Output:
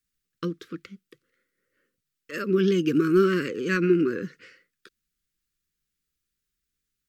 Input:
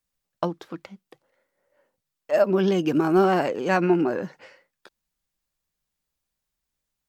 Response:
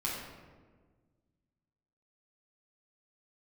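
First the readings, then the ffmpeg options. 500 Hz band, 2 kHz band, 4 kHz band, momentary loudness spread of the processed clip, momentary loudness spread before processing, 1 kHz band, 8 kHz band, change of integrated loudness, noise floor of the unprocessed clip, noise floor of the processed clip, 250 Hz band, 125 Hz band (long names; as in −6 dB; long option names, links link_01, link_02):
−2.5 dB, 0.0 dB, 0.0 dB, 18 LU, 19 LU, −10.5 dB, can't be measured, −1.5 dB, −83 dBFS, −83 dBFS, 0.0 dB, 0.0 dB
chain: -af "asuperstop=centerf=760:order=8:qfactor=1"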